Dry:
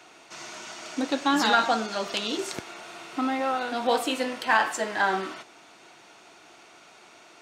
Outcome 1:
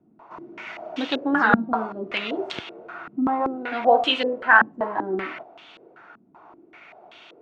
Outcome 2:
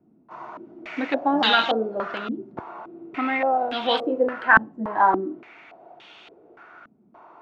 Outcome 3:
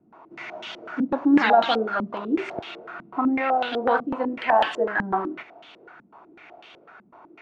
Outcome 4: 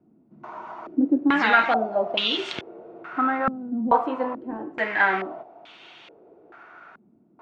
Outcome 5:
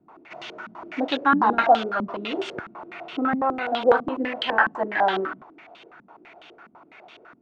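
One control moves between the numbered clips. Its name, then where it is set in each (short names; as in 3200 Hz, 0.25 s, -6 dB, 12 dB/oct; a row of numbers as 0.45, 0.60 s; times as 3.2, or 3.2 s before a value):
stepped low-pass, rate: 5.2, 3.5, 8, 2.3, 12 Hz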